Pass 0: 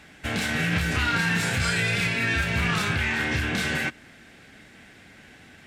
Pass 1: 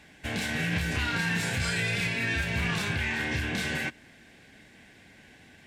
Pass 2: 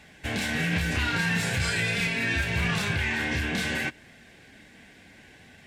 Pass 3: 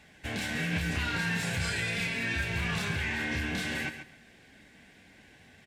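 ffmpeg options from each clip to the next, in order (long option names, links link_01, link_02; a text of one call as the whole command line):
ffmpeg -i in.wav -af "bandreject=frequency=1300:width=5.2,volume=-4dB" out.wav
ffmpeg -i in.wav -af "flanger=delay=1.5:depth=2.9:regen=-69:speed=0.72:shape=sinusoidal,volume=6.5dB" out.wav
ffmpeg -i in.wav -af "aecho=1:1:136|272|408:0.316|0.0569|0.0102,volume=-5dB" out.wav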